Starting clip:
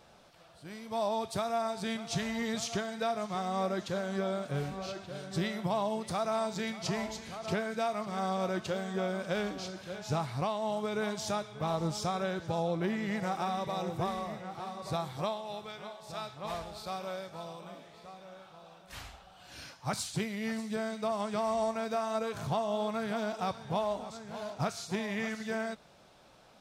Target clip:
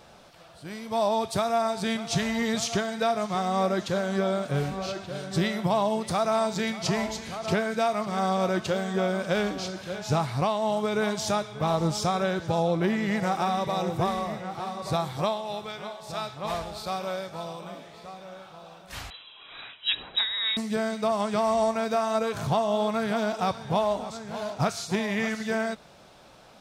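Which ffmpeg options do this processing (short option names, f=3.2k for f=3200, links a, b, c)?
-filter_complex "[0:a]asettb=1/sr,asplit=3[a][b][c];[a]atrim=end=19.104[d];[b]atrim=start=19.1:end=20.57,asetpts=PTS-STARTPTS,afade=t=in:d=0.004:c=qsin,afade=t=out:st=1.466:d=0.004:c=qsin,lowpass=f=3.4k:t=q:w=0.5098,lowpass=f=3.4k:t=q:w=0.6013,lowpass=f=3.4k:t=q:w=0.9,lowpass=f=3.4k:t=q:w=2.563,afreqshift=-4000[e];[c]atrim=start=20.566[f];[d][e]acrossfade=d=0.004:c1=hsin:c2=qsin[g];[g][f]acrossfade=d=0.004:c1=qsin:c2=hsin,volume=7dB"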